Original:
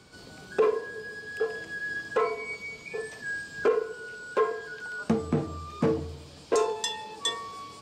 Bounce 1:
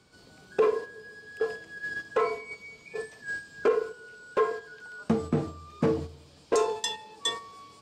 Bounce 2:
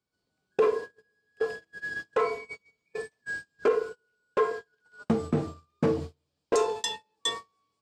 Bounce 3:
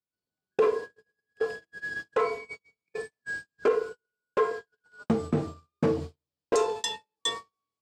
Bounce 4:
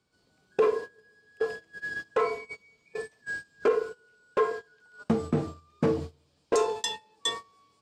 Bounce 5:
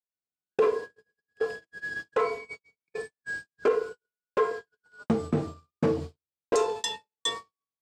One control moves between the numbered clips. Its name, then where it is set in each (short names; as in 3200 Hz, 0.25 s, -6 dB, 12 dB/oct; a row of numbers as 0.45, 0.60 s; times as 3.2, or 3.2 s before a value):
gate, range: -7, -33, -46, -21, -59 dB